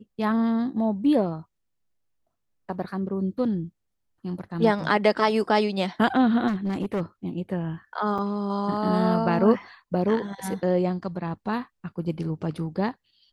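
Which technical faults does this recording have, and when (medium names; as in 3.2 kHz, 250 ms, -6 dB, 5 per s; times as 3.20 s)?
6.47–7.02 s: clipped -22.5 dBFS
8.18–8.19 s: dropout 5.1 ms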